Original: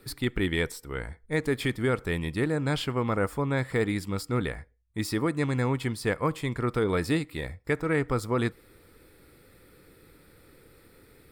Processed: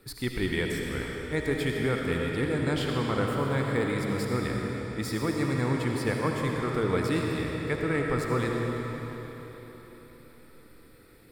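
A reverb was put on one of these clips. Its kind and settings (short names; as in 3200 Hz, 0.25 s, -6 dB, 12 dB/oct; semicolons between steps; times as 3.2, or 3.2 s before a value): digital reverb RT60 4.2 s, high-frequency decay 0.9×, pre-delay 35 ms, DRR -0.5 dB; gain -3 dB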